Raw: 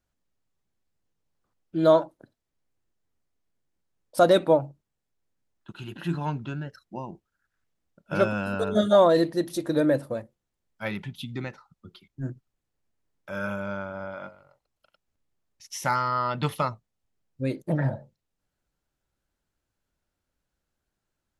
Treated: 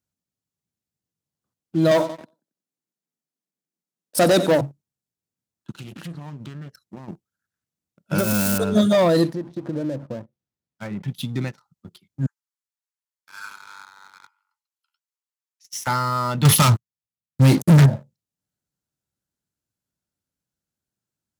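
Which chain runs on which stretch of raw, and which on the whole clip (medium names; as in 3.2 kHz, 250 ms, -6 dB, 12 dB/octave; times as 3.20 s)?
1.91–4.61 s: high-pass 170 Hz 24 dB/octave + feedback delay 91 ms, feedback 40%, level -15 dB + waveshaping leveller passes 1
5.74–7.08 s: compression 8:1, threshold -38 dBFS + loudspeaker Doppler distortion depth 0.35 ms
8.18–8.58 s: zero-crossing glitches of -22 dBFS + compression 4:1, threshold -22 dBFS
9.33–11.08 s: compression 3:1, threshold -32 dBFS + low-pass that closes with the level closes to 1.3 kHz, closed at -32.5 dBFS + distance through air 86 m
12.26–15.87 s: Chebyshev high-pass 840 Hz, order 10 + flange 1.7 Hz, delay 5.8 ms, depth 7.5 ms, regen +44%
16.45–17.86 s: peaking EQ 420 Hz -8 dB 1.5 oct + waveshaping leveller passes 5
whole clip: waveshaping leveller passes 2; high-pass 130 Hz 12 dB/octave; tone controls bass +11 dB, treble +9 dB; trim -5 dB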